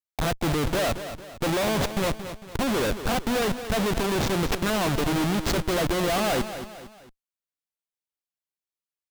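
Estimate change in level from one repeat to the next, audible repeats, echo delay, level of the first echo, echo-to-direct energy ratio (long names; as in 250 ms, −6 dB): −7.5 dB, 3, 226 ms, −11.0 dB, −10.0 dB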